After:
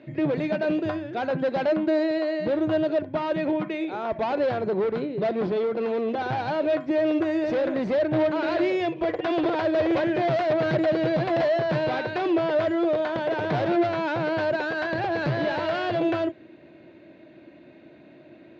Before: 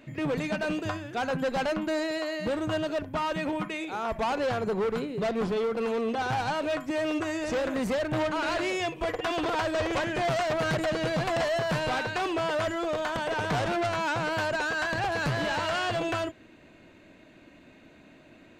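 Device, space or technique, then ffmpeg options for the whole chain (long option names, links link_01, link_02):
guitar cabinet: -af "highpass=89,equalizer=frequency=140:width_type=q:width=4:gain=5,equalizer=frequency=340:width_type=q:width=4:gain=10,equalizer=frequency=600:width_type=q:width=4:gain=7,equalizer=frequency=1200:width_type=q:width=4:gain=-4,equalizer=frequency=2900:width_type=q:width=4:gain=-4,lowpass=frequency=4300:width=0.5412,lowpass=frequency=4300:width=1.3066"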